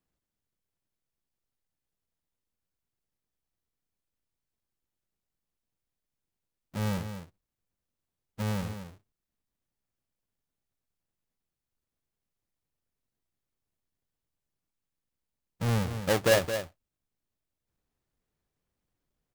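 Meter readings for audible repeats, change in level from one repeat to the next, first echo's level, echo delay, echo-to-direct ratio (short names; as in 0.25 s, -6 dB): 1, no steady repeat, -9.5 dB, 0.22 s, -9.5 dB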